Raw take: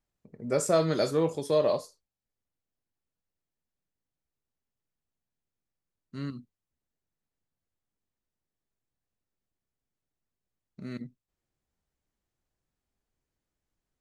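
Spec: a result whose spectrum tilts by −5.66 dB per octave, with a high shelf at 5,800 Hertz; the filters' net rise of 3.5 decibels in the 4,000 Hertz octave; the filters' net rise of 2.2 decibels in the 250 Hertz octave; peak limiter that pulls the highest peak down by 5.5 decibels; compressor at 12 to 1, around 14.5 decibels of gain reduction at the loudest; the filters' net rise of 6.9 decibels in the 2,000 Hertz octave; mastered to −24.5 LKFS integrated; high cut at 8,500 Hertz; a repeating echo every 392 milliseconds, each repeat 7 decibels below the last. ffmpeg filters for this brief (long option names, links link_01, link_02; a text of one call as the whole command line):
ffmpeg -i in.wav -af "lowpass=8500,equalizer=frequency=250:width_type=o:gain=3,equalizer=frequency=2000:width_type=o:gain=8.5,equalizer=frequency=4000:width_type=o:gain=3.5,highshelf=frequency=5800:gain=-3.5,acompressor=threshold=-33dB:ratio=12,alimiter=level_in=3.5dB:limit=-24dB:level=0:latency=1,volume=-3.5dB,aecho=1:1:392|784|1176|1568|1960:0.447|0.201|0.0905|0.0407|0.0183,volume=17dB" out.wav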